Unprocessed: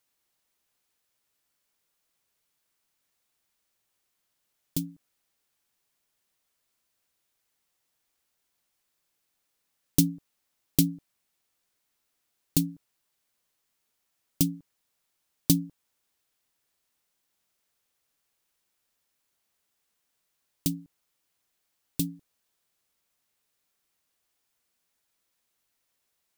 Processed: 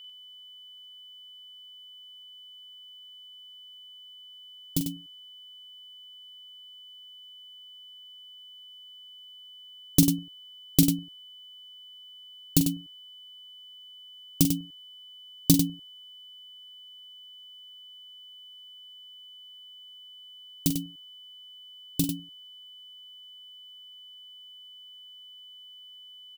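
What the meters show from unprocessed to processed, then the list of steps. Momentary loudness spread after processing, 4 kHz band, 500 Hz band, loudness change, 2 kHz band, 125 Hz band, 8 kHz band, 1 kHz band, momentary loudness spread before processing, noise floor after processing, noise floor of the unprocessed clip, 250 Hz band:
20 LU, +8.5 dB, +3.5 dB, +2.5 dB, +3.5 dB, +3.0 dB, +3.5 dB, can't be measured, 16 LU, −49 dBFS, −78 dBFS, +3.5 dB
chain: steady tone 3,000 Hz −47 dBFS
loudspeakers that aren't time-aligned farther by 15 metres −9 dB, 33 metres −8 dB
level +2.5 dB

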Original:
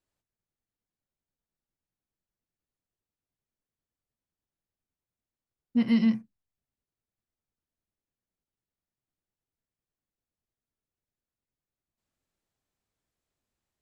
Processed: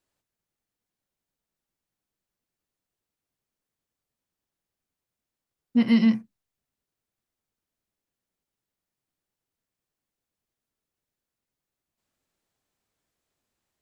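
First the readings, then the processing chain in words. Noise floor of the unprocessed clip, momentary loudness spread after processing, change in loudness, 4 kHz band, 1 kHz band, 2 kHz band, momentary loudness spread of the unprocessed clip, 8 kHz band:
below −85 dBFS, 9 LU, +4.0 dB, +5.5 dB, +5.5 dB, +5.5 dB, 9 LU, can't be measured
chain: low-shelf EQ 130 Hz −7 dB
level +5.5 dB

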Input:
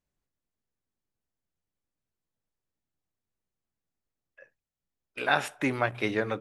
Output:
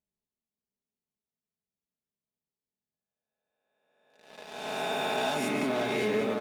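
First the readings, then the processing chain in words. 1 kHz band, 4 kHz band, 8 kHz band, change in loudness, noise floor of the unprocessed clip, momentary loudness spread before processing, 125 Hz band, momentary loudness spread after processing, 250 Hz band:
0.0 dB, +3.5 dB, +4.5 dB, −1.5 dB, below −85 dBFS, 6 LU, −4.5 dB, 12 LU, +1.5 dB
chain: peak hold with a rise ahead of every peak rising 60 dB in 1.88 s
low-shelf EQ 390 Hz +8.5 dB
single-tap delay 582 ms −8.5 dB
leveller curve on the samples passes 3
downward compressor 6 to 1, threshold −20 dBFS, peak gain reduction 10.5 dB
high-pass filter 190 Hz 6 dB per octave
parametric band 1,500 Hz −9 dB 0.58 octaves
comb filter 4.7 ms, depth 60%
single-tap delay 181 ms −7.5 dB
level −7.5 dB

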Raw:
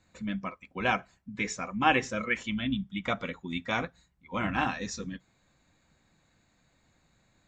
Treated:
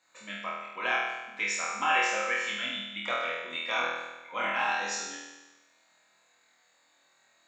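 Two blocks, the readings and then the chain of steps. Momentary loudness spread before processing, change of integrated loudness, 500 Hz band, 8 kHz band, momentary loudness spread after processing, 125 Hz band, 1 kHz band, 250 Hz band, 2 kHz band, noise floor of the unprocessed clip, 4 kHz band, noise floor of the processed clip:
13 LU, +1.0 dB, −1.0 dB, +6.0 dB, 12 LU, below −15 dB, +1.0 dB, −13.5 dB, +3.0 dB, −70 dBFS, +4.0 dB, −67 dBFS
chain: high-pass filter 670 Hz 12 dB per octave
brickwall limiter −20 dBFS, peak gain reduction 9 dB
flutter between parallel walls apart 4.2 metres, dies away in 1.1 s

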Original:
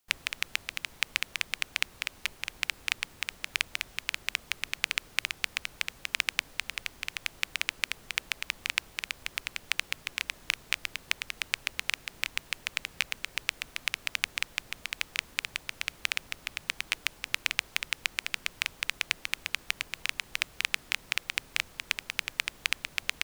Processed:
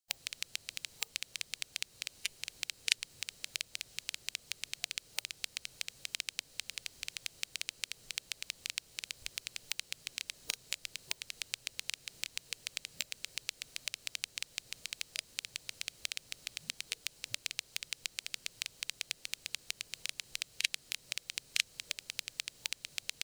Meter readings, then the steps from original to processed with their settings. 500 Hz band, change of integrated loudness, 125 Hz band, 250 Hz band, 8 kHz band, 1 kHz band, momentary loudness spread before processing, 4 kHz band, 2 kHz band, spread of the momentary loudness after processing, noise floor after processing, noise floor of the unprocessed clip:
−9.0 dB, −7.0 dB, −8.5 dB, −10.5 dB, −1.0 dB, −15.0 dB, 5 LU, −5.5 dB, −11.5 dB, 6 LU, −63 dBFS, −55 dBFS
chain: octave-band graphic EQ 125/500/1,000/4,000/8,000 Hz +9/+7/−3/+9/+7 dB
downward compressor 2 to 1, threshold −27 dBFS, peak gain reduction 7 dB
high-shelf EQ 3,500 Hz +8.5 dB
notch filter 3,500 Hz, Q 13
noise gate −47 dBFS, range −11 dB
noise reduction from a noise print of the clip's start 11 dB
level −2 dB

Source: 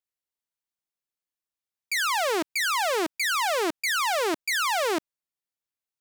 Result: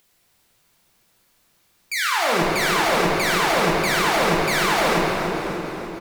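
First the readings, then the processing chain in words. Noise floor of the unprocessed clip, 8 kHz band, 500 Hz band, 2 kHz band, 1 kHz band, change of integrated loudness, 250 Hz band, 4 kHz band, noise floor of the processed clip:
below −85 dBFS, +3.0 dB, +7.0 dB, +5.5 dB, +6.5 dB, +5.0 dB, +9.5 dB, +4.5 dB, −63 dBFS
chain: sub-octave generator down 1 octave, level +1 dB
upward compression, threshold −45 dBFS
repeating echo 296 ms, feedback 59%, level −11 dB
rectangular room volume 210 cubic metres, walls hard, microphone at 0.78 metres

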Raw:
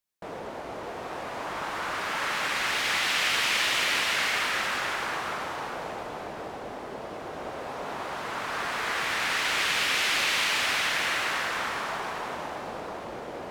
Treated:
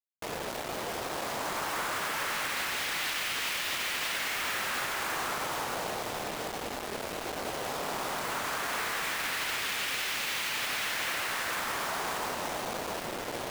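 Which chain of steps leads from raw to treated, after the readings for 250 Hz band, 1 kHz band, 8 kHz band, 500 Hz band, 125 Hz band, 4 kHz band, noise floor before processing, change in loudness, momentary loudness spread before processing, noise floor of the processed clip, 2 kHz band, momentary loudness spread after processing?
−1.0 dB, −3.0 dB, −1.0 dB, −1.5 dB, −0.5 dB, −5.0 dB, −39 dBFS, −4.5 dB, 15 LU, −38 dBFS, −5.0 dB, 6 LU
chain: high-pass filter 63 Hz 24 dB per octave
brickwall limiter −24.5 dBFS, peak gain reduction 11 dB
bit reduction 6 bits

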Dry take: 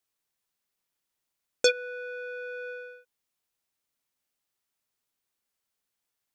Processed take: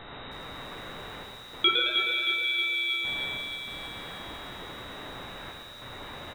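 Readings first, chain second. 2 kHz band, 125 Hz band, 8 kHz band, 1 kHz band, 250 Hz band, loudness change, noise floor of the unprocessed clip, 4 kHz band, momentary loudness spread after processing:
+7.5 dB, can't be measured, −11.0 dB, +16.0 dB, +17.0 dB, +4.0 dB, −84 dBFS, +12.0 dB, 17 LU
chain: spike at every zero crossing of −20.5 dBFS
notch filter 1,300 Hz, Q 7.3
hum removal 58.15 Hz, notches 31
gate pattern "xxxxxxxx..xxxx" 98 BPM
on a send: echo with shifted repeats 109 ms, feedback 36%, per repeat −130 Hz, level −5.5 dB
on the sum: mains hum 60 Hz, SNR 30 dB
rectangular room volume 200 cubic metres, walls hard, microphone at 0.37 metres
voice inversion scrambler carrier 3,800 Hz
feedback echo at a low word length 314 ms, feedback 55%, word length 8 bits, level −7.5 dB

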